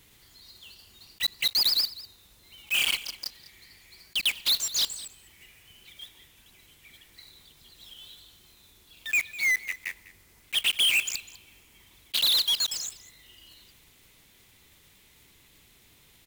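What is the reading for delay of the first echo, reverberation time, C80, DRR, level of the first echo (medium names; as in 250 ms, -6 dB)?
200 ms, no reverb, no reverb, no reverb, -18.0 dB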